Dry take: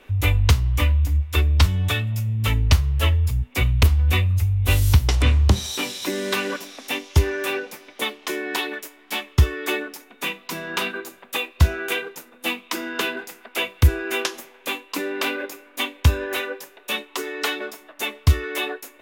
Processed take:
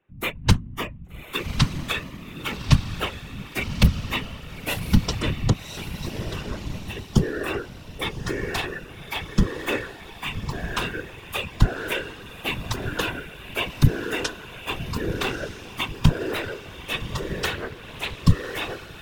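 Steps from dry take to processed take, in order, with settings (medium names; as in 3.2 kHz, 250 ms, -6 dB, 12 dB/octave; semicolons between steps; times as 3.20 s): local Wiener filter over 9 samples; spectral noise reduction 20 dB; 5.53–6.97 s: compression, threshold -34 dBFS, peak gain reduction 13.5 dB; on a send: echo that smears into a reverb 1180 ms, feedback 42%, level -9 dB; on the sum: whisper effect; 17.54–18.24 s: loudspeaker Doppler distortion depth 0.48 ms; trim -1 dB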